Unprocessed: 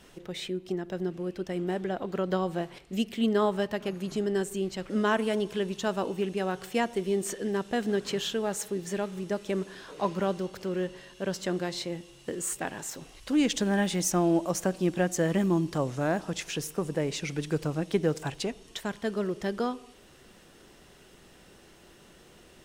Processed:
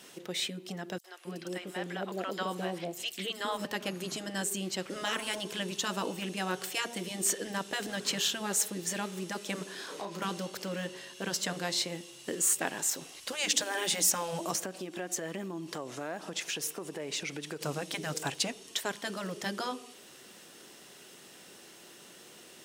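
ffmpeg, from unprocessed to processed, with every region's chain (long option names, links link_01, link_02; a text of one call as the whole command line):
ffmpeg -i in.wav -filter_complex "[0:a]asettb=1/sr,asplit=3[link_01][link_02][link_03];[link_01]atrim=end=0.984[link_04];[link_02]atrim=start=0.98:end=3.65,asetpts=PTS-STARTPTS,afade=type=in:duration=0.004:curve=qsin,afade=type=out:start_time=2.666:duration=0.004:curve=qsin,lowshelf=frequency=220:gain=-6.5,acrossover=split=720|5400[link_05][link_06][link_07];[link_06]adelay=60[link_08];[link_05]adelay=270[link_09];[link_09][link_08][link_07]amix=inputs=3:normalize=0,atrim=end_sample=117747[link_10];[link_03]atrim=start=3.646[link_11];[link_04][link_10]acrossfade=duration=0.004:curve1=hsin:curve2=qsin[link_12];[link_12][link_11]acrossfade=duration=0.004:curve1=qsin:curve2=hsin,asettb=1/sr,asplit=3[link_13][link_14][link_15];[link_13]atrim=end=9.754[link_16];[link_14]atrim=start=9.75:end=10.22,asetpts=PTS-STARTPTS,afade=type=in:duration=0.004:curve=qsin,afade=type=out:start_time=0.466:duration=0.004:curve=qsin,bandreject=frequency=2800:width=22,acompressor=threshold=-35dB:ratio=12:attack=3.2:release=140:knee=1:detection=peak,asplit=2[link_17][link_18];[link_18]adelay=35,volume=-5dB[link_19];[link_17][link_19]amix=inputs=2:normalize=0,atrim=end_sample=20727[link_20];[link_15]atrim=start=10.216[link_21];[link_16][link_20]acrossfade=duration=0.004:curve1=hsin:curve2=qsin[link_22];[link_22][link_21]acrossfade=duration=0.004:curve1=qsin:curve2=hsin,asettb=1/sr,asplit=3[link_23][link_24][link_25];[link_23]atrim=end=14.554[link_26];[link_24]atrim=start=14.55:end=17.61,asetpts=PTS-STARTPTS,afade=type=in:duration=0.004:curve=qsin,afade=type=out:start_time=3.056:duration=0.004:curve=qsin,bass=frequency=250:gain=-5,treble=frequency=4000:gain=-5,aphaser=in_gain=1:out_gain=1:delay=3:decay=0.23:speed=1.1:type=sinusoidal,acompressor=threshold=-35dB:ratio=4:attack=3.2:release=140:knee=1:detection=peak[link_27];[link_25]atrim=start=17.606[link_28];[link_26][link_27]acrossfade=duration=0.004:curve1=hsin:curve2=qsin[link_29];[link_29][link_28]acrossfade=duration=0.004:curve1=qsin:curve2=hsin,highpass=190,highshelf=frequency=3000:gain=9,afftfilt=real='re*lt(hypot(re,im),0.2)':imag='im*lt(hypot(re,im),0.2)':win_size=1024:overlap=0.75" out.wav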